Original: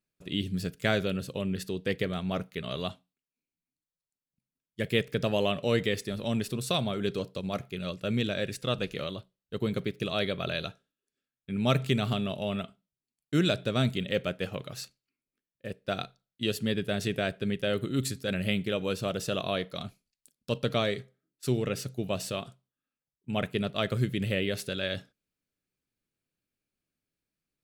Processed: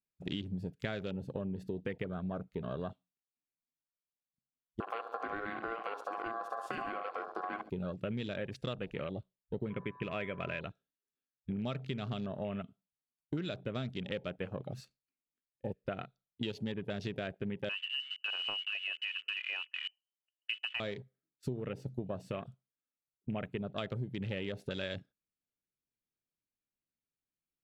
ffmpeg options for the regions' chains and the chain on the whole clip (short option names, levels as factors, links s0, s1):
-filter_complex "[0:a]asettb=1/sr,asplit=3[s0][s1][s2];[s0]atrim=end=4.804[s3];[s1]atrim=start=4.8:end=7.7,asetpts=PTS-STARTPTS,afade=t=in:d=0.004:c=qsin,afade=t=out:st=2.896:d=0.004:c=qsin,acompressor=threshold=0.0282:ratio=3:attack=3.2:release=140:knee=1:detection=peak,aeval=exprs='val(0)*sin(2*PI*920*n/s)':c=same,aecho=1:1:69|138|207|276|345|414:0.355|0.188|0.0997|0.0528|0.028|0.0148,atrim=end_sample=127890[s4];[s2]atrim=start=7.696[s5];[s3][s4]acrossfade=d=0.004:c1=hsin:c2=qsin[s6];[s6][s5]acrossfade=d=0.004:c1=qsin:c2=hsin,asettb=1/sr,asplit=3[s7][s8][s9];[s7]atrim=end=9.704[s10];[s8]atrim=start=9.7:end=10.61,asetpts=PTS-STARTPTS,afade=t=in:d=0.004:c=qsin,afade=t=out:st=0.906:d=0.004:c=qsin,acrossover=split=3500[s11][s12];[s12]acompressor=threshold=0.00355:ratio=4:attack=1:release=60[s13];[s11][s13]amix=inputs=2:normalize=0,highshelf=f=3400:t=q:w=3:g=-12.5,aeval=exprs='val(0)+0.00501*sin(2*PI*1000*n/s)':c=same[s14];[s9]atrim=start=10.606[s15];[s10][s14]acrossfade=d=0.004:c1=hsin:c2=qsin[s16];[s16][s15]acrossfade=d=0.004:c1=qsin:c2=hsin,asettb=1/sr,asplit=3[s17][s18][s19];[s17]atrim=end=17.694[s20];[s18]atrim=start=17.69:end=20.8,asetpts=PTS-STARTPTS,afade=t=in:d=0.004:c=qsin,afade=t=out:st=3.106:d=0.004:c=qsin,adynamicsmooth=sensitivity=1.5:basefreq=1300,lowpass=f=2600:t=q:w=0.5098,lowpass=f=2600:t=q:w=0.6013,lowpass=f=2600:t=q:w=0.9,lowpass=f=2600:t=q:w=2.563,afreqshift=-3100[s21];[s19]atrim=start=20.796[s22];[s20][s21]acrossfade=d=0.004:c1=hsin:c2=qsin[s23];[s23][s22]acrossfade=d=0.004:c1=qsin:c2=hsin,afwtdn=0.01,highshelf=f=6200:g=-9,acompressor=threshold=0.01:ratio=10,volume=1.88"